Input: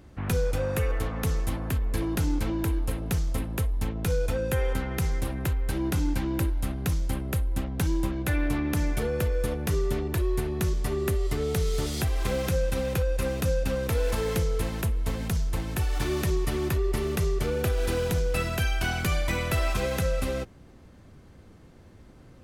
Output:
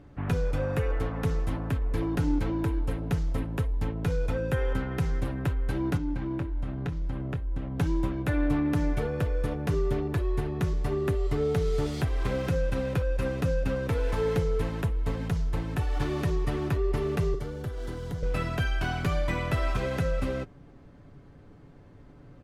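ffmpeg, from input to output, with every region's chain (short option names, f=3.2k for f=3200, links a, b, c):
-filter_complex "[0:a]asettb=1/sr,asplit=3[a][b][c];[a]atrim=end=5.974[d];[b]atrim=start=5.97:end=7.76,asetpts=PTS-STARTPTS,afade=t=in:d=0.004:c=qsin,afade=t=out:st=1.786:d=0.004:c=qsin,aemphasis=mode=reproduction:type=50fm,acompressor=threshold=-28dB:ratio=6:attack=3.2:release=140:knee=1:detection=peak,asplit=2[e][f];[f]adelay=24,volume=-11dB[g];[e][g]amix=inputs=2:normalize=0,atrim=end_sample=78939[h];[c]atrim=start=7.756[i];[d][h]acrossfade=d=0.004:c1=hsin:c2=qsin[j];[j][i]acrossfade=d=0.004:c1=qsin:c2=hsin,asettb=1/sr,asplit=3[k][l][m];[k]atrim=end=17.344[n];[l]atrim=start=17.34:end=18.23,asetpts=PTS-STARTPTS,afade=t=in:d=0.004:c=qsin,afade=t=out:st=0.886:d=0.004:c=qsin,aeval=exprs='sgn(val(0))*max(abs(val(0))-0.00224,0)':c=same,acrossover=split=110|390|4100[o][p][q][r];[o]acompressor=threshold=-35dB:ratio=3[s];[p]acompressor=threshold=-40dB:ratio=3[t];[q]acompressor=threshold=-43dB:ratio=3[u];[r]acompressor=threshold=-44dB:ratio=3[v];[s][t][u][v]amix=inputs=4:normalize=0,bandreject=f=2.5k:w=6.2[w];[m]atrim=start=18.226[x];[n][w]acrossfade=d=0.004:c1=hsin:c2=qsin[y];[y][x]acrossfade=d=0.004:c1=qsin:c2=hsin,lowpass=f=1.8k:p=1,aecho=1:1:7:0.43"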